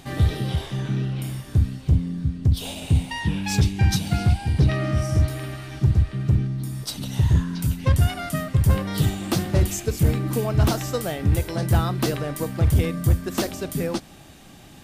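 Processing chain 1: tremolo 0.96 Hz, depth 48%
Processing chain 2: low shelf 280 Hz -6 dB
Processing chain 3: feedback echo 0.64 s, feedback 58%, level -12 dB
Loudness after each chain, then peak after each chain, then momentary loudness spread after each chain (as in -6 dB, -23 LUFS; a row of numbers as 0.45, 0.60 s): -25.5, -27.5, -23.0 LUFS; -9.0, -11.5, -8.0 dBFS; 8, 6, 7 LU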